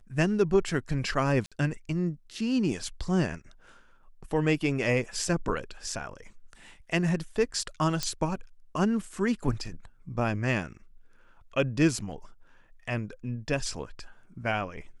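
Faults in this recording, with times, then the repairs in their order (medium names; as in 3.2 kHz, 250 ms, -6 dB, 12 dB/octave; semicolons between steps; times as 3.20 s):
1.46–1.52 s: dropout 56 ms
8.03 s: pop -15 dBFS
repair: de-click; interpolate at 1.46 s, 56 ms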